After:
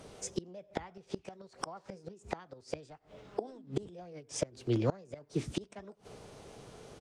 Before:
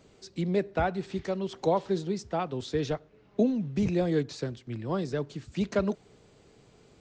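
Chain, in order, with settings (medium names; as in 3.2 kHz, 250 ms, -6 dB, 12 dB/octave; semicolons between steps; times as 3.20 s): echo from a far wall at 16 m, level -29 dB; formant shift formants +5 st; inverted gate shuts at -25 dBFS, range -28 dB; trim +6.5 dB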